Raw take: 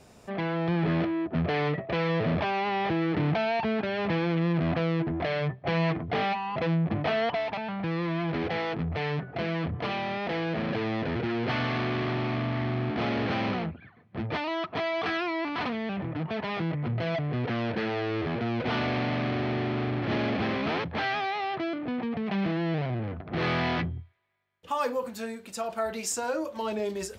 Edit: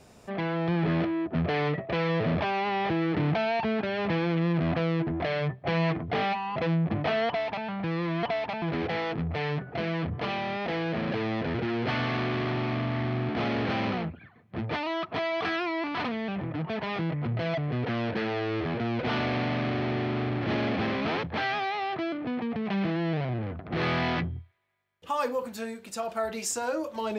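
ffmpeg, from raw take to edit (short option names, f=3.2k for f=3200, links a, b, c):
-filter_complex "[0:a]asplit=3[a][b][c];[a]atrim=end=8.232[d];[b]atrim=start=7.268:end=7.662[e];[c]atrim=start=8.228[f];[d][e]acrossfade=d=0.004:c1=hsin:c2=hsin[g];[g][f]acrossfade=d=0.004:c1=hsin:c2=hsin"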